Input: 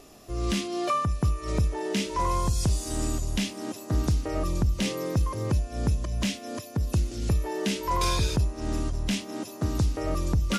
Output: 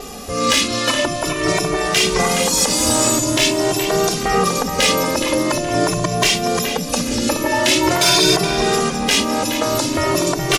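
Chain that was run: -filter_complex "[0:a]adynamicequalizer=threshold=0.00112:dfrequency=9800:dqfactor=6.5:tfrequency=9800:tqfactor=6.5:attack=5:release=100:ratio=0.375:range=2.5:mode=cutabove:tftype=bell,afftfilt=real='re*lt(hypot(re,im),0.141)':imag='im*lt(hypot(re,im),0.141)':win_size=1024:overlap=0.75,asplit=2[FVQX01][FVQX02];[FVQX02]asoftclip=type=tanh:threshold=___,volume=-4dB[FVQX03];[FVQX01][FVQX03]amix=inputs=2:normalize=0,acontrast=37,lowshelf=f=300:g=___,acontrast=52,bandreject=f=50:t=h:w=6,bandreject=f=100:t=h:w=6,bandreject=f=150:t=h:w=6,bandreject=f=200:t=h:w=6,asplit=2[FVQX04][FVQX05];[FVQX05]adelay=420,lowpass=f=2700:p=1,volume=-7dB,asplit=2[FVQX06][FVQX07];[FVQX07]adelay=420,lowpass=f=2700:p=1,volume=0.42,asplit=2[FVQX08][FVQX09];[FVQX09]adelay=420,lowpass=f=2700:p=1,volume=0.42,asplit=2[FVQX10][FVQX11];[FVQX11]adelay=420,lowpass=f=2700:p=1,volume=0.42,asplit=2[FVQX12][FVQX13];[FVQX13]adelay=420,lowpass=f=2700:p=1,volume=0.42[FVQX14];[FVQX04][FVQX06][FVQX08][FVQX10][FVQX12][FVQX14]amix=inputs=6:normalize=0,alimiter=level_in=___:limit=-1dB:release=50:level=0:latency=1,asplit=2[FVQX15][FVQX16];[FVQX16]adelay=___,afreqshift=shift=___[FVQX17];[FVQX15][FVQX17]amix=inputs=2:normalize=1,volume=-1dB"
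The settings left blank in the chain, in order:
-30dB, -2.5, 8.5dB, 2.1, 0.45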